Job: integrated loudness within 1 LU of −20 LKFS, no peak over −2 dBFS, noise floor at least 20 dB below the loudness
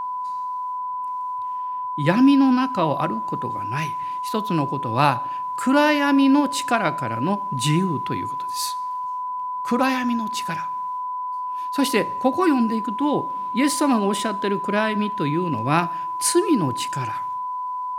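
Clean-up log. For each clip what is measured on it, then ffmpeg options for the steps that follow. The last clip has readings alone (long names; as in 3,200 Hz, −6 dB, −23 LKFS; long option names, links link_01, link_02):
interfering tone 1,000 Hz; level of the tone −25 dBFS; integrated loudness −22.5 LKFS; sample peak −2.5 dBFS; target loudness −20.0 LKFS
→ -af "bandreject=frequency=1000:width=30"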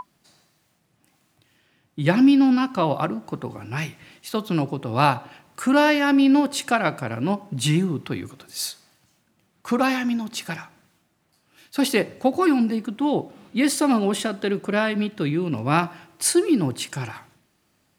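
interfering tone none found; integrated loudness −22.5 LKFS; sample peak −2.5 dBFS; target loudness −20.0 LKFS
→ -af "volume=2.5dB,alimiter=limit=-2dB:level=0:latency=1"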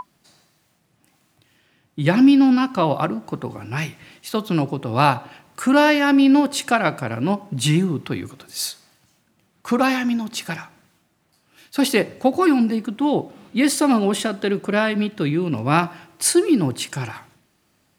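integrated loudness −20.0 LKFS; sample peak −2.0 dBFS; background noise floor −65 dBFS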